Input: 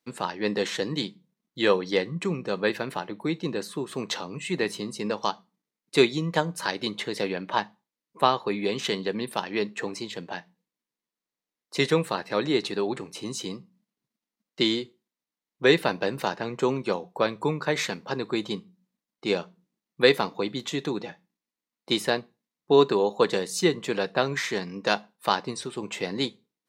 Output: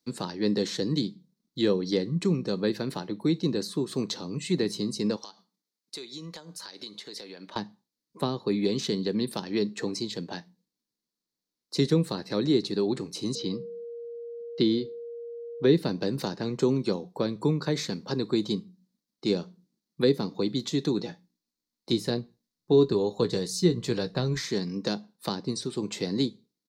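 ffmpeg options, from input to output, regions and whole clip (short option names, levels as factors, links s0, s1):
-filter_complex "[0:a]asettb=1/sr,asplit=3[s0][s1][s2];[s0]atrim=end=5.164[s3];[s1]atrim=start=5.16:end=7.56,asetpts=PTS-STARTPTS,afade=t=in:d=0.004:c=qsin,afade=t=out:st=2.396:d=0.004:c=qsin,highpass=f=740:p=1,acompressor=threshold=0.0112:ratio=6:attack=3.2:release=140:knee=1:detection=peak[s4];[s2]atrim=start=7.556[s5];[s3][s4]acrossfade=d=0.004:c1=hsin:c2=qsin[s6];[s6][s5]acrossfade=d=0.004:c1=qsin:c2=hsin,asettb=1/sr,asplit=3[s7][s8][s9];[s7]atrim=end=13.354[s10];[s8]atrim=start=13.35:end=15.75,asetpts=PTS-STARTPTS,afade=t=in:d=0.004:c=qsin,afade=t=out:st=2.396:d=0.004:c=qsin,lowpass=f=4700:w=0.5412,lowpass=f=4700:w=1.3066,aeval=exprs='val(0)+0.0158*sin(2*PI*470*n/s)':c=same[s11];[s9]atrim=start=15.746[s12];[s10][s11]acrossfade=d=0.004:c1=hsin:c2=qsin[s13];[s13][s12]acrossfade=d=0.004:c1=qsin:c2=hsin,asettb=1/sr,asplit=3[s14][s15][s16];[s14]atrim=end=20.974[s17];[s15]atrim=start=20.97:end=24.48,asetpts=PTS-STARTPTS,afade=t=in:d=0.004:c=qsin,afade=t=out:st=3.506:d=0.004:c=qsin,asubboost=boost=6.5:cutoff=100,asplit=2[s18][s19];[s19]adelay=17,volume=0.282[s20];[s18][s20]amix=inputs=2:normalize=0,atrim=end_sample=154791[s21];[s16]atrim=start=24.476[s22];[s17][s21]acrossfade=d=0.004:c1=hsin:c2=qsin[s23];[s23][s22]acrossfade=d=0.004:c1=qsin:c2=hsin,firequalizer=gain_entry='entry(270,0);entry(660,-9);entry(2800,-11);entry(4300,3);entry(7900,-4)':delay=0.05:min_phase=1,acrossover=split=440[s24][s25];[s25]acompressor=threshold=0.0158:ratio=5[s26];[s24][s26]amix=inputs=2:normalize=0,volume=1.68"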